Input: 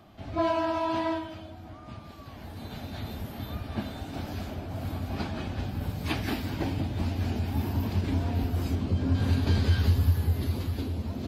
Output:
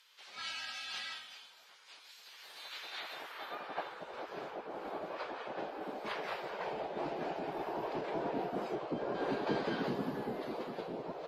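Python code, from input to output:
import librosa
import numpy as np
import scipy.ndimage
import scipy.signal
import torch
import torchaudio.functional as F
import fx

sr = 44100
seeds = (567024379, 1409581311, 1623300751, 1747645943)

y = fx.spec_gate(x, sr, threshold_db=-15, keep='weak')
y = fx.filter_sweep_bandpass(y, sr, from_hz=5900.0, to_hz=540.0, start_s=2.3, end_s=4.06, q=0.71)
y = y * librosa.db_to_amplitude(5.0)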